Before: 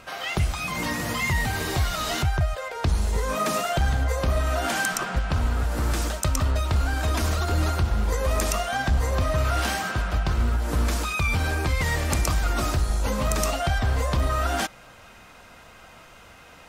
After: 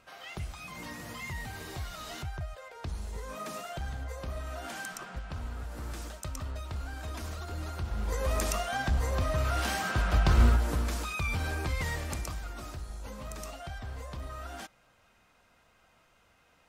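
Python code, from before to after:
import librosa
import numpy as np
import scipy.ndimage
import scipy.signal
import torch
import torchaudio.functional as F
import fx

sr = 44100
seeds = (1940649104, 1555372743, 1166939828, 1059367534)

y = fx.gain(x, sr, db=fx.line((7.67, -14.5), (8.22, -6.0), (9.65, -6.0), (10.45, 2.5), (10.83, -8.0), (11.83, -8.0), (12.55, -17.0)))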